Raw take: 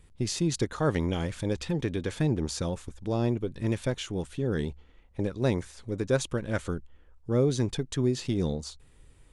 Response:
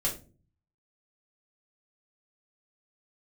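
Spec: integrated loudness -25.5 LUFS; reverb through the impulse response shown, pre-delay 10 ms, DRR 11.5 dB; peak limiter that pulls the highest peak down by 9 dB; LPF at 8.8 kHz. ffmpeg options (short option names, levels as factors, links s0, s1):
-filter_complex "[0:a]lowpass=8800,alimiter=limit=0.075:level=0:latency=1,asplit=2[s0][s1];[1:a]atrim=start_sample=2205,adelay=10[s2];[s1][s2]afir=irnorm=-1:irlink=0,volume=0.133[s3];[s0][s3]amix=inputs=2:normalize=0,volume=2.51"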